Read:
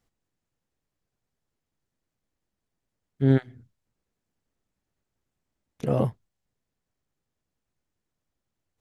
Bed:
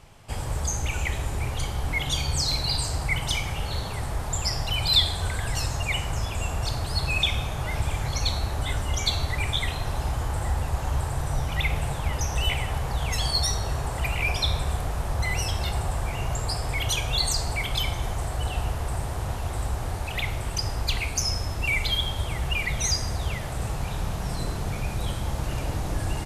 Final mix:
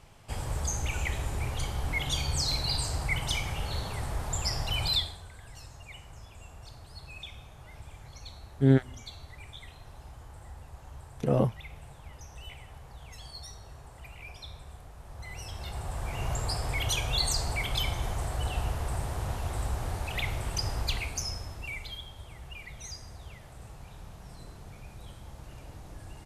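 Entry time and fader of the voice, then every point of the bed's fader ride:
5.40 s, -1.0 dB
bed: 4.86 s -4 dB
5.26 s -20 dB
14.97 s -20 dB
16.28 s -3.5 dB
20.80 s -3.5 dB
22.08 s -17.5 dB

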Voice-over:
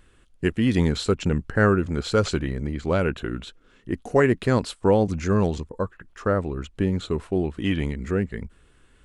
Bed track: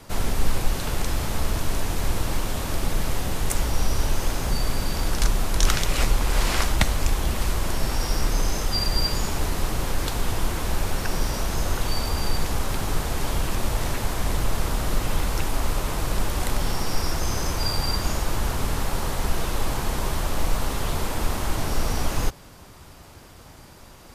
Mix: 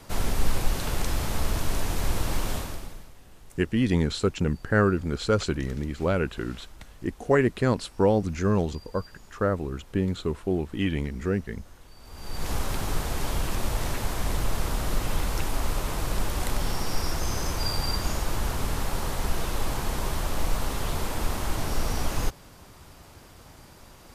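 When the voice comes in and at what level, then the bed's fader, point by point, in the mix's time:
3.15 s, -2.5 dB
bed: 2.55 s -2 dB
3.15 s -26 dB
11.96 s -26 dB
12.50 s -3 dB

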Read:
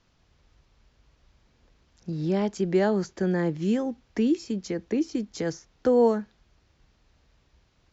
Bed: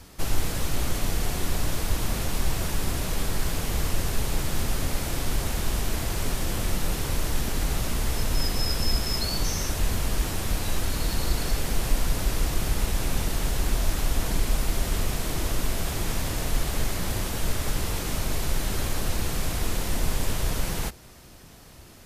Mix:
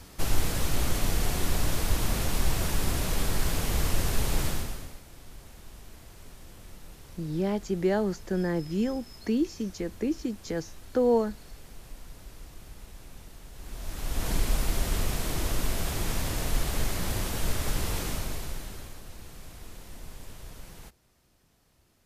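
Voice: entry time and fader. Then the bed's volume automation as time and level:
5.10 s, -3.0 dB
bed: 4.47 s -0.5 dB
5.03 s -21 dB
13.50 s -21 dB
14.30 s -2 dB
18.03 s -2 dB
19.03 s -18 dB

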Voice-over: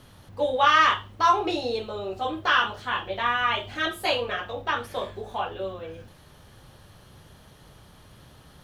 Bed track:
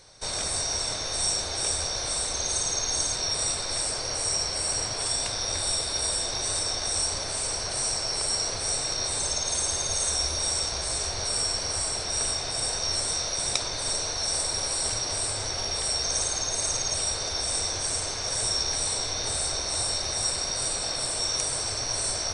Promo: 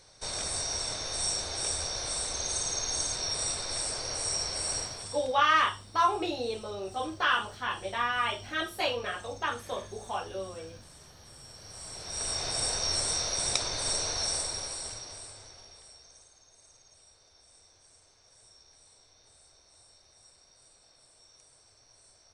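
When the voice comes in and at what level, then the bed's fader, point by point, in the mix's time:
4.75 s, -5.0 dB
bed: 4.77 s -4.5 dB
5.47 s -25.5 dB
11.39 s -25.5 dB
12.43 s -2 dB
14.21 s -2 dB
16.32 s -31.5 dB

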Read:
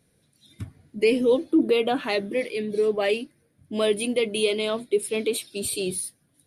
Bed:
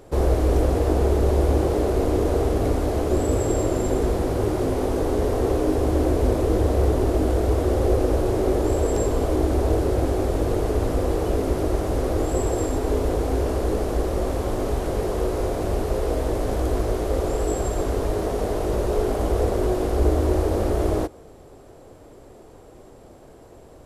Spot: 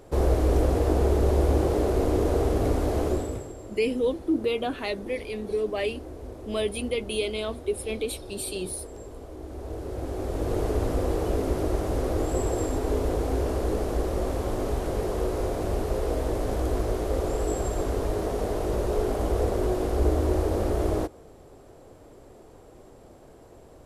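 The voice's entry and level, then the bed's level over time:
2.75 s, -5.0 dB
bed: 3.07 s -2.5 dB
3.55 s -19.5 dB
9.36 s -19.5 dB
10.60 s -3.5 dB

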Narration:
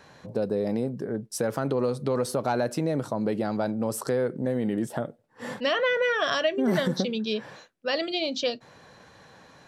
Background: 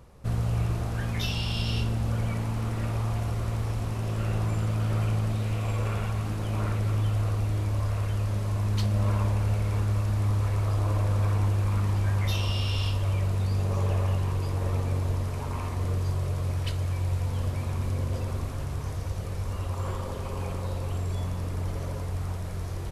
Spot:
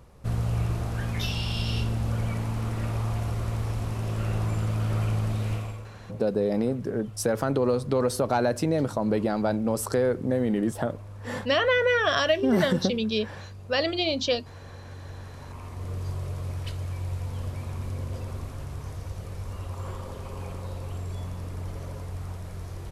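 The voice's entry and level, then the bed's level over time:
5.85 s, +2.0 dB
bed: 5.54 s 0 dB
5.92 s -17 dB
14.75 s -17 dB
16.08 s -4 dB

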